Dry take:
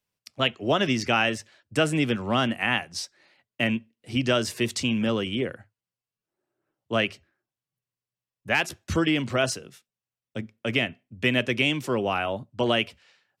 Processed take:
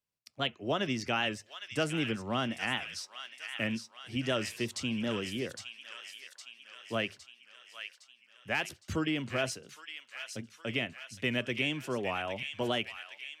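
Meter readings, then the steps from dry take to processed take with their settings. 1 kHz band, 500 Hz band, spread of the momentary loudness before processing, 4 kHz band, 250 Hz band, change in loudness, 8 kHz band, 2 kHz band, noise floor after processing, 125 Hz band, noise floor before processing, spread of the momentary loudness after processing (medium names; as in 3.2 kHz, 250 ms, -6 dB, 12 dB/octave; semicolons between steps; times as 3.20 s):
-8.5 dB, -8.5 dB, 9 LU, -7.0 dB, -8.5 dB, -9.0 dB, -7.0 dB, -7.5 dB, -65 dBFS, -8.5 dB, under -85 dBFS, 13 LU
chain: feedback echo behind a high-pass 811 ms, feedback 59%, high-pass 1.7 kHz, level -6 dB; warped record 78 rpm, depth 100 cents; trim -8.5 dB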